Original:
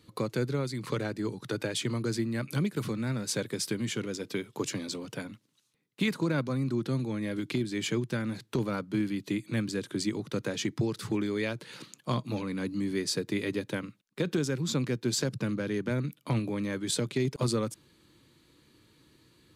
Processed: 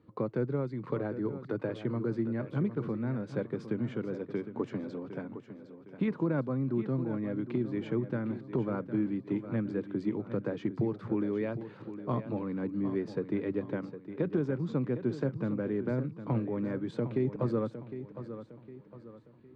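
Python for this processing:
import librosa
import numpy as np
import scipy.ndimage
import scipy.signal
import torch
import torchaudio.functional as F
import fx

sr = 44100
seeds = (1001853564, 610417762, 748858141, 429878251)

y = scipy.signal.sosfilt(scipy.signal.butter(2, 1100.0, 'lowpass', fs=sr, output='sos'), x)
y = fx.low_shelf(y, sr, hz=65.0, db=-11.5)
y = fx.echo_feedback(y, sr, ms=759, feedback_pct=40, wet_db=-11.5)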